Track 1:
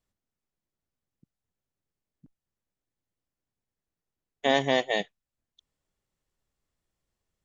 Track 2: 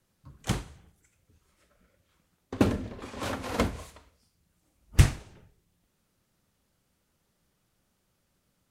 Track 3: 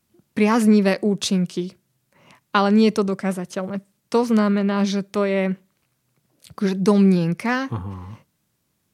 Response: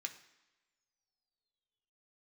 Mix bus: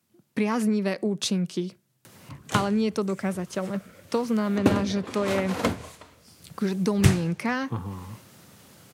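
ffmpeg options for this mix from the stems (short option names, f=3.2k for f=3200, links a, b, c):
-filter_complex "[0:a]acompressor=threshold=-25dB:ratio=6,volume=-19dB[a];[1:a]acompressor=mode=upward:threshold=-35dB:ratio=2.5,adelay=2050,volume=2.5dB[b];[2:a]acompressor=threshold=-20dB:ratio=4,volume=-2dB[c];[a][b][c]amix=inputs=3:normalize=0,highpass=f=92:w=0.5412,highpass=f=92:w=1.3066"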